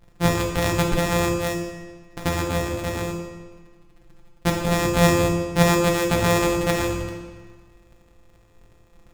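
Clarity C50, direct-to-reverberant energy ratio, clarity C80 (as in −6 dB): 2.5 dB, −0.5 dB, 4.5 dB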